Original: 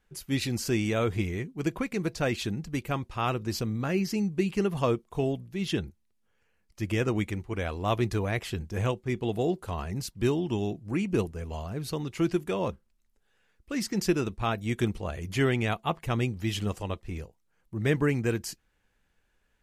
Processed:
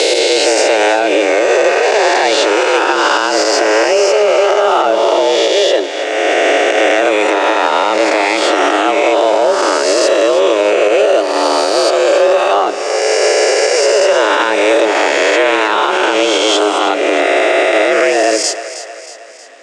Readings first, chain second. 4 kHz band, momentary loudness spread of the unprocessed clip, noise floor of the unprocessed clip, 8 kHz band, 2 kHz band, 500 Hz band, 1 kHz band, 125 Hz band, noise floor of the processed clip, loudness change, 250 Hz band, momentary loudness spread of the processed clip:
+23.5 dB, 8 LU, −72 dBFS, +22.5 dB, +23.0 dB, +22.5 dB, +23.5 dB, below −20 dB, −24 dBFS, +18.5 dB, +10.0 dB, 2 LU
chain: peak hold with a rise ahead of every peak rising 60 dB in 2.79 s
camcorder AGC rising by 11 dB per second
high-pass filter 140 Hz 12 dB per octave
downward compressor 2.5 to 1, threshold −29 dBFS, peak gain reduction 8.5 dB
leveller curve on the samples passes 1
frequency shifter +210 Hz
Butterworth low-pass 8,400 Hz 36 dB per octave
echo with a time of its own for lows and highs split 470 Hz, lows 85 ms, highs 316 ms, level −12.5 dB
boost into a limiter +17.5 dB
level −1 dB

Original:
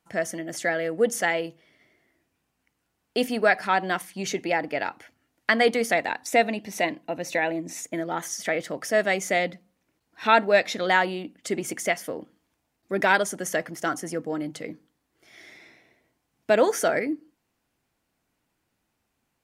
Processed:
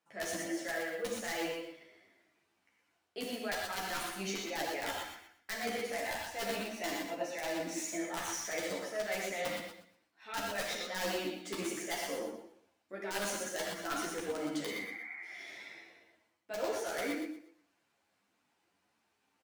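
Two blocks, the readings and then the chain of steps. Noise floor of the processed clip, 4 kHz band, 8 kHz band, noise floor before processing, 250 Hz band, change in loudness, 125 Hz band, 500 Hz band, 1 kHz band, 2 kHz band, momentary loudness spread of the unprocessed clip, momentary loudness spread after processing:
−78 dBFS, −6.5 dB, −6.5 dB, −77 dBFS, −10.0 dB, −12.5 dB, −12.5 dB, −13.0 dB, −14.0 dB, −13.0 dB, 11 LU, 10 LU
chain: running median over 3 samples
healed spectral selection 0:14.71–0:15.51, 700–2,400 Hz
high-pass filter 410 Hz 6 dB per octave
high-shelf EQ 6,600 Hz −4 dB
reversed playback
downward compressor 20 to 1, threshold −34 dBFS, peak gain reduction 21.5 dB
reversed playback
wrap-around overflow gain 27 dB
on a send: repeating echo 119 ms, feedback 28%, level −6.5 dB
on the sum: reverb whose tail is shaped and stops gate 150 ms flat, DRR −0.5 dB
string-ensemble chorus
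level +1 dB

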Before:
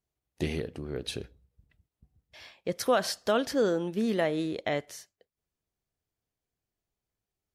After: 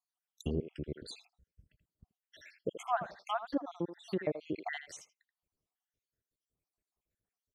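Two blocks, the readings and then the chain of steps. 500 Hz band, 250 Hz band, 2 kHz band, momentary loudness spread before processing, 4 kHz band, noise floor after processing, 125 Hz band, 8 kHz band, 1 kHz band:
−10.5 dB, −8.0 dB, −8.5 dB, 12 LU, −12.5 dB, below −85 dBFS, −5.0 dB, −12.5 dB, −3.0 dB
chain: time-frequency cells dropped at random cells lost 73%
far-end echo of a speakerphone 80 ms, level −10 dB
treble cut that deepens with the level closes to 1,000 Hz, closed at −29.5 dBFS

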